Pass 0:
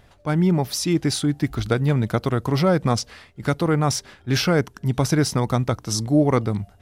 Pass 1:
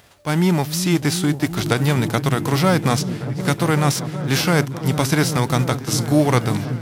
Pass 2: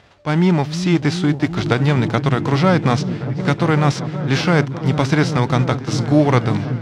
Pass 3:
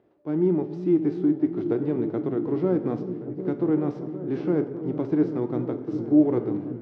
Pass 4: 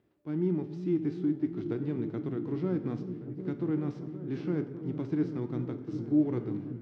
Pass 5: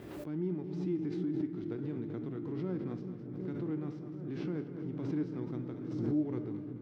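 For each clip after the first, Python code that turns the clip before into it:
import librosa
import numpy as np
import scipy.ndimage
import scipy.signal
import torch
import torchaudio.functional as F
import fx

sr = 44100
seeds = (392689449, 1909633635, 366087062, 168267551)

y1 = fx.envelope_flatten(x, sr, power=0.6)
y1 = scipy.signal.sosfilt(scipy.signal.butter(2, 73.0, 'highpass', fs=sr, output='sos'), y1)
y1 = fx.echo_opening(y1, sr, ms=375, hz=200, octaves=1, feedback_pct=70, wet_db=-6)
y1 = y1 * librosa.db_to_amplitude(1.5)
y2 = fx.air_absorb(y1, sr, metres=140.0)
y2 = y2 * librosa.db_to_amplitude(2.5)
y3 = fx.bandpass_q(y2, sr, hz=340.0, q=3.9)
y3 = fx.rev_plate(y3, sr, seeds[0], rt60_s=0.88, hf_ratio=0.8, predelay_ms=0, drr_db=9.0)
y4 = fx.peak_eq(y3, sr, hz=600.0, db=-13.0, octaves=2.3)
y5 = fx.echo_feedback(y4, sr, ms=215, feedback_pct=49, wet_db=-12)
y5 = fx.pre_swell(y5, sr, db_per_s=37.0)
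y5 = y5 * librosa.db_to_amplitude(-6.5)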